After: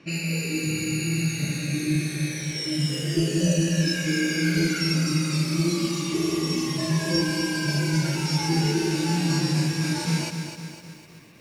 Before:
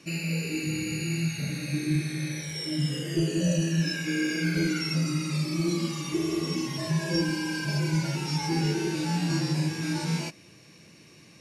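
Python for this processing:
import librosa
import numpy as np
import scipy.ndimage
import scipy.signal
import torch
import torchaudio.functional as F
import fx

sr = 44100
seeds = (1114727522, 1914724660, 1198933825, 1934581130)

y = fx.env_lowpass(x, sr, base_hz=2500.0, full_db=-26.5)
y = fx.high_shelf(y, sr, hz=5500.0, db=4.5)
y = fx.echo_crushed(y, sr, ms=254, feedback_pct=55, bits=9, wet_db=-7.5)
y = F.gain(torch.from_numpy(y), 2.5).numpy()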